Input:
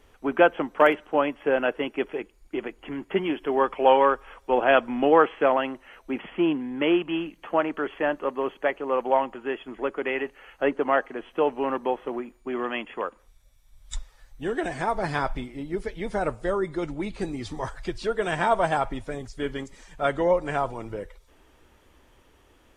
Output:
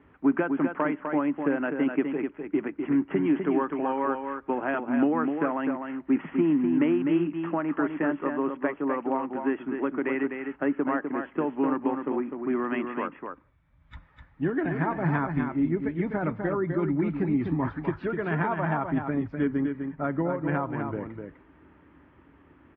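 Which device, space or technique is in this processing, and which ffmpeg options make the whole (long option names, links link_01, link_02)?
bass amplifier: -filter_complex "[0:a]asettb=1/sr,asplit=3[link_01][link_02][link_03];[link_01]atrim=end=19.474[link_04];[link_02]atrim=start=19.47:end=20.34,asetpts=PTS-STARTPTS,afade=type=in:duration=0.004:curve=qsin,afade=type=out:start_time=0.866:duration=0.004:curve=qsin,lowpass=frequency=1300:poles=1[link_05];[link_03]atrim=start=20.336[link_06];[link_04][link_05]acrossfade=duration=0.004:curve1=hsin:curve2=qsin[link_07];[link_07][link_06]acrossfade=duration=0.004:curve1=qsin:curve2=hsin,acompressor=threshold=-26dB:ratio=4,highpass=frequency=62:width=0.5412,highpass=frequency=62:width=1.3066,equalizer=frequency=160:width_type=q:width=4:gain=9,equalizer=frequency=280:width_type=q:width=4:gain=9,equalizer=frequency=490:width_type=q:width=4:gain=-7,equalizer=frequency=720:width_type=q:width=4:gain=-5,lowpass=frequency=2100:width=0.5412,lowpass=frequency=2100:width=1.3066,aecho=1:1:252:0.501,volume=2dB"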